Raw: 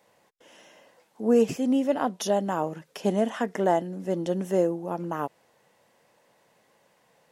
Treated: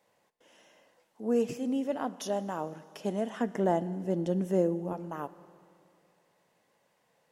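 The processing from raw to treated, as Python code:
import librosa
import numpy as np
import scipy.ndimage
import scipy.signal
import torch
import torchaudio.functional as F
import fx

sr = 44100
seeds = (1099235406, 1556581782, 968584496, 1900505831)

y = fx.low_shelf(x, sr, hz=330.0, db=10.5, at=(3.38, 4.93))
y = fx.rev_schroeder(y, sr, rt60_s=2.5, comb_ms=26, drr_db=16.0)
y = F.gain(torch.from_numpy(y), -7.5).numpy()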